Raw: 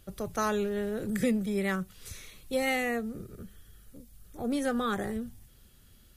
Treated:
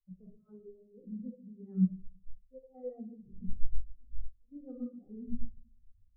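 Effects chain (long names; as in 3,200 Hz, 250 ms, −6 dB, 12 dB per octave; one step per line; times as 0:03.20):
low-pass filter 1,300 Hz 24 dB per octave
reversed playback
downward compressor 12 to 1, threshold −45 dBFS, peak gain reduction 22 dB
reversed playback
gate pattern "xx.xx.xx.xx" 93 BPM −12 dB
rectangular room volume 460 cubic metres, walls mixed, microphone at 1.9 metres
every bin expanded away from the loudest bin 2.5 to 1
level +14 dB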